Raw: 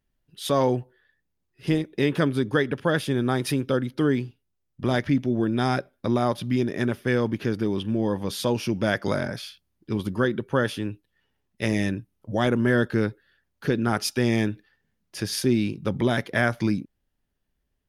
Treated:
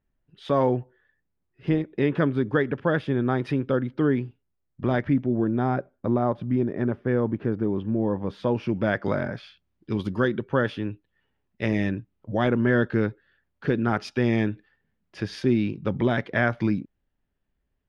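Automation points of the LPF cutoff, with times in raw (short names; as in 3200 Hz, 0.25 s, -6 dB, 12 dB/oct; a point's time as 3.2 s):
4.94 s 2100 Hz
5.58 s 1200 Hz
8.09 s 1200 Hz
8.77 s 2200 Hz
9.42 s 2200 Hz
10.09 s 5500 Hz
10.53 s 2800 Hz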